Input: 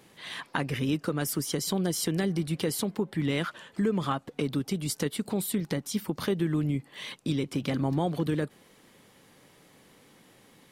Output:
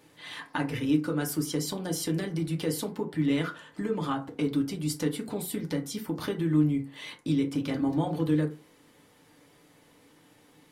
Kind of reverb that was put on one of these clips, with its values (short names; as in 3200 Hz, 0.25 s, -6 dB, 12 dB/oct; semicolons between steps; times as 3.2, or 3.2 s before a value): FDN reverb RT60 0.34 s, low-frequency decay 1×, high-frequency decay 0.5×, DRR 1.5 dB; gain -4 dB